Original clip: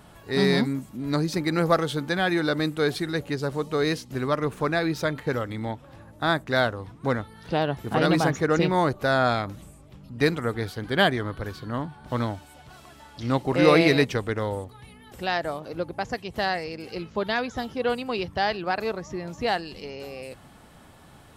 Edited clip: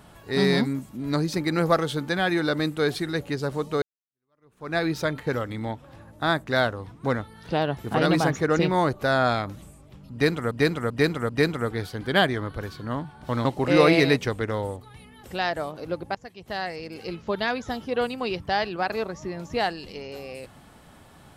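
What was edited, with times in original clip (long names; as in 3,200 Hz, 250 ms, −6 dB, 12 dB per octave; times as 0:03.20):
0:03.82–0:04.76: fade in exponential
0:10.12–0:10.51: repeat, 4 plays
0:12.28–0:13.33: remove
0:16.03–0:16.89: fade in, from −16.5 dB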